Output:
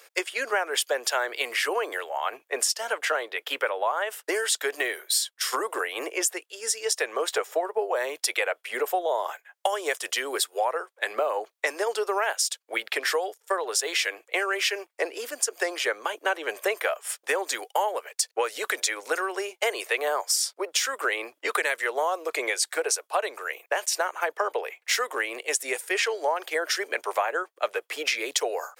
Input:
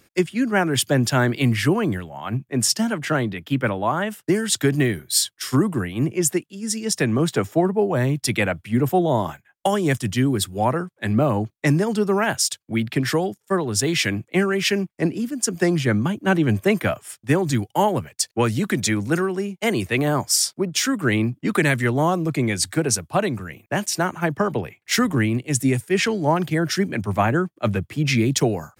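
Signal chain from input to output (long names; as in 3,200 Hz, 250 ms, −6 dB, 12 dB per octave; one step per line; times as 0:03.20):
elliptic high-pass filter 460 Hz, stop band 60 dB
downward compressor 4 to 1, threshold −32 dBFS, peak gain reduction 14 dB
level +7.5 dB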